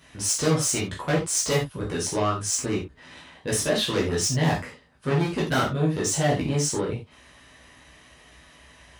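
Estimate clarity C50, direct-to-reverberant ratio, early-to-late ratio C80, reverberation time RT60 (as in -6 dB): 8.0 dB, -5.5 dB, 14.0 dB, not exponential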